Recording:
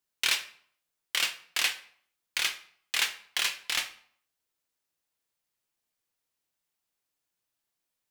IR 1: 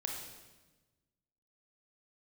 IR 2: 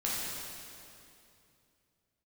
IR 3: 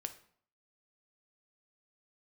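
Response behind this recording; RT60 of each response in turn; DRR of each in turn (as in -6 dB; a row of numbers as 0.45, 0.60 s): 3; 1.2, 2.7, 0.60 s; 0.0, -7.0, 7.5 dB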